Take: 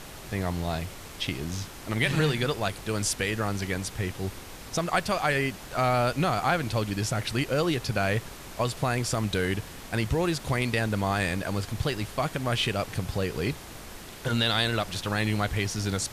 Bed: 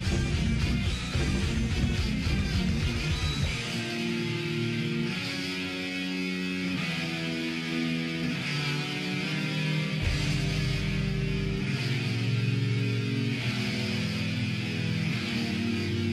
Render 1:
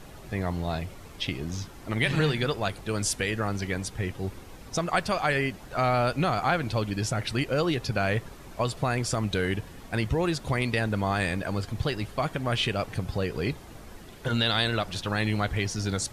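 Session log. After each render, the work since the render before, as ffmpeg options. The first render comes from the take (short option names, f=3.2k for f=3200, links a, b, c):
-af "afftdn=nr=9:nf=-43"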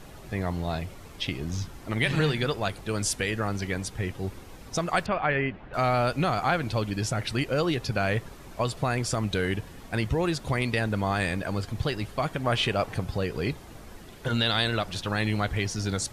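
-filter_complex "[0:a]asettb=1/sr,asplit=3[a][b][c];[a]atrim=end=1.354[d];[b]atrim=start=1.35:end=1.77,asetpts=PTS-STARTPTS,afade=t=in:d=0.004:c=qsin,afade=t=out:st=0.416:d=0.004:c=qsin,asubboost=boost=8.5:cutoff=230[e];[c]atrim=start=1.766[f];[d][e]acrossfade=d=0.004:c1=hsin:c2=qsin[g];[g][f]acrossfade=d=0.004:c1=qsin:c2=hsin,asettb=1/sr,asplit=3[h][i][j];[h]atrim=end=5.064[k];[i]atrim=start=5.06:end=5.74,asetpts=PTS-STARTPTS,afade=t=in:d=0.004:c=qsin,afade=t=out:st=0.676:d=0.004:c=qsin,lowpass=f=2.8k:w=0.5412,lowpass=f=2.8k:w=1.3066[l];[j]atrim=start=5.736[m];[k][l]acrossfade=d=0.004:c1=hsin:c2=qsin[n];[n][m]acrossfade=d=0.004:c1=qsin:c2=hsin,asettb=1/sr,asplit=3[o][p][q];[o]atrim=end=12.444[r];[p]atrim=start=12.44:end=13.05,asetpts=PTS-STARTPTS,afade=t=in:d=0.004:c=qsin,afade=t=out:st=0.606:d=0.004:c=qsin,equalizer=f=820:w=0.69:g=4.5[s];[q]atrim=start=13.046[t];[r][s]acrossfade=d=0.004:c1=hsin:c2=qsin[u];[u][t]acrossfade=d=0.004:c1=qsin:c2=hsin"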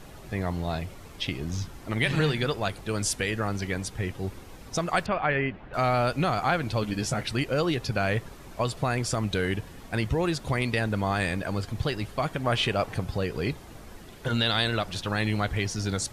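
-filter_complex "[0:a]asettb=1/sr,asplit=3[a][b][c];[a]atrim=end=6.814[d];[b]atrim=start=6.81:end=7.23,asetpts=PTS-STARTPTS,afade=t=in:d=0.004:c=qsin,afade=t=out:st=0.416:d=0.004:c=qsin,asplit=2[e][f];[f]adelay=14,volume=-6dB[g];[e][g]amix=inputs=2:normalize=0,atrim=end_sample=18522[h];[c]atrim=start=7.226[i];[d][h]acrossfade=d=0.004:c1=hsin:c2=qsin[j];[j][i]acrossfade=d=0.004:c1=qsin:c2=hsin"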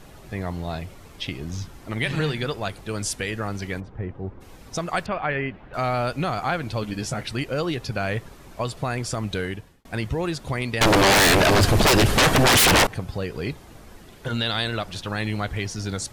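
-filter_complex "[0:a]asplit=3[a][b][c];[a]afade=t=out:st=3.79:d=0.02[d];[b]lowpass=1.2k,afade=t=in:st=3.79:d=0.02,afade=t=out:st=4.4:d=0.02[e];[c]afade=t=in:st=4.4:d=0.02[f];[d][e][f]amix=inputs=3:normalize=0,asettb=1/sr,asplit=3[g][h][i];[g]atrim=end=10.814[j];[h]atrim=start=10.81:end=12.87,asetpts=PTS-STARTPTS,afade=t=in:d=0.004:c=qsin,afade=t=out:st=2.056:d=0.004:c=qsin,aeval=exprs='0.237*sin(PI/2*8.91*val(0)/0.237)':c=same[k];[i]atrim=start=12.866[l];[j][k]acrossfade=d=0.004:c1=hsin:c2=qsin[m];[m][l]acrossfade=d=0.004:c1=qsin:c2=hsin,asplit=2[n][o];[n]atrim=end=9.85,asetpts=PTS-STARTPTS,afade=t=out:st=9.39:d=0.46[p];[o]atrim=start=9.85,asetpts=PTS-STARTPTS,afade=t=in:d=0.004:c=hsin[q];[p][q]concat=n=2:v=0:a=1"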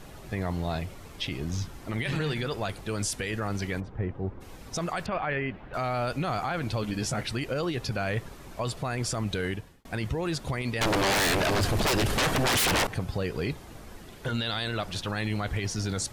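-af "alimiter=limit=-21dB:level=0:latency=1:release=15"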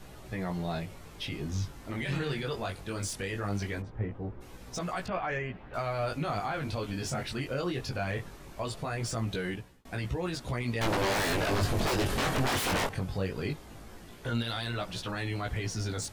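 -filter_complex "[0:a]flanger=delay=16:depth=6.2:speed=0.2,acrossover=split=720|1500[a][b][c];[c]asoftclip=type=tanh:threshold=-30.5dB[d];[a][b][d]amix=inputs=3:normalize=0"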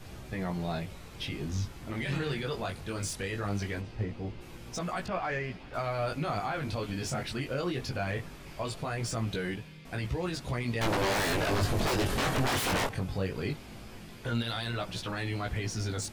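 -filter_complex "[1:a]volume=-22dB[a];[0:a][a]amix=inputs=2:normalize=0"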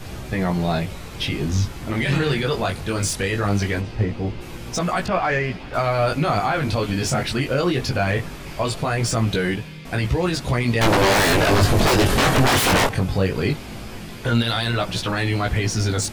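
-af "volume=12dB"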